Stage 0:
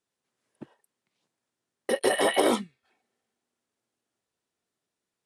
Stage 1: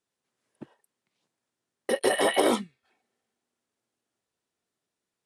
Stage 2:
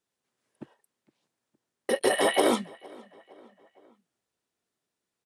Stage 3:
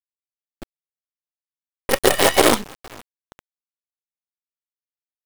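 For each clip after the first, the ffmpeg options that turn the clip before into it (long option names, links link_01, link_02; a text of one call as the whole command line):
ffmpeg -i in.wav -af anull out.wav
ffmpeg -i in.wav -filter_complex "[0:a]asplit=2[link_01][link_02];[link_02]adelay=462,lowpass=frequency=3300:poles=1,volume=-23.5dB,asplit=2[link_03][link_04];[link_04]adelay=462,lowpass=frequency=3300:poles=1,volume=0.52,asplit=2[link_05][link_06];[link_06]adelay=462,lowpass=frequency=3300:poles=1,volume=0.52[link_07];[link_01][link_03][link_05][link_07]amix=inputs=4:normalize=0" out.wav
ffmpeg -i in.wav -af "acrusher=bits=4:dc=4:mix=0:aa=0.000001,volume=8dB" out.wav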